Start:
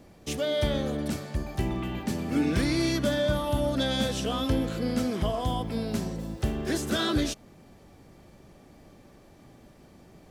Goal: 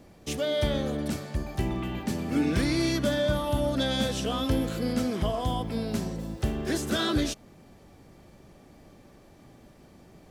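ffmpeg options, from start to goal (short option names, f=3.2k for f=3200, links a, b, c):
-filter_complex "[0:a]asettb=1/sr,asplit=3[a][b][c];[a]atrim=end=4.514[d];[b]atrim=start=4.51:end=4.93,asetpts=PTS-STARTPTS,afade=t=in:d=0.004:c=qsin,afade=t=out:st=0.416:d=0.004:c=qsin,highshelf=f=9.1k:g=8.5[e];[c]atrim=start=4.926[f];[d][e]acrossfade=d=0.004:c1=hsin:c2=qsin[g];[g][f]acrossfade=d=0.004:c1=qsin:c2=hsin"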